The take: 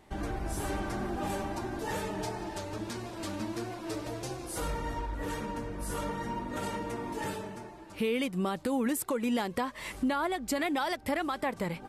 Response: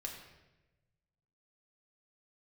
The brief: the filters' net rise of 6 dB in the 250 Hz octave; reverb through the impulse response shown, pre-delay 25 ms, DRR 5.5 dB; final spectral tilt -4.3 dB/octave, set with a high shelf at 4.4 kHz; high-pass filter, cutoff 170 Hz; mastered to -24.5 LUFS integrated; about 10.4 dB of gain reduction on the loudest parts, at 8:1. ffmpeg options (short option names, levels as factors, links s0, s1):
-filter_complex "[0:a]highpass=170,equalizer=f=250:t=o:g=8,highshelf=f=4400:g=8.5,acompressor=threshold=0.0316:ratio=8,asplit=2[s0][s1];[1:a]atrim=start_sample=2205,adelay=25[s2];[s1][s2]afir=irnorm=-1:irlink=0,volume=0.631[s3];[s0][s3]amix=inputs=2:normalize=0,volume=2.99"